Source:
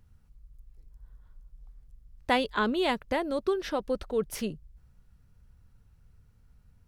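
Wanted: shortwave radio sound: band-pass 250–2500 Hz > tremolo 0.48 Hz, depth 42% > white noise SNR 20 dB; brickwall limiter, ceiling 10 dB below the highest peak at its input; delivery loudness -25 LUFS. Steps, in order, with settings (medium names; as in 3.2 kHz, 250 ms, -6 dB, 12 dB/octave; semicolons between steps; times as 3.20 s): peak limiter -22.5 dBFS; band-pass 250–2500 Hz; tremolo 0.48 Hz, depth 42%; white noise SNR 20 dB; trim +11.5 dB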